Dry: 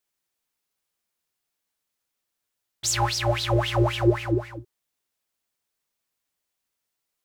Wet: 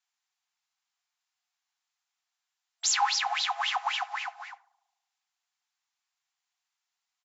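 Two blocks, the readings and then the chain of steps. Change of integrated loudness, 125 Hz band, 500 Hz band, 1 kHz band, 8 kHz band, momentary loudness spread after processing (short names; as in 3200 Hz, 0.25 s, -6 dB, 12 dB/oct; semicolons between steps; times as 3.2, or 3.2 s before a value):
-4.0 dB, under -40 dB, -22.5 dB, 0.0 dB, -1.0 dB, 14 LU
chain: on a send: darkening echo 72 ms, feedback 81%, low-pass 970 Hz, level -18.5 dB; on the sum: FFT band-pass 680–7600 Hz; speakerphone echo 90 ms, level -25 dB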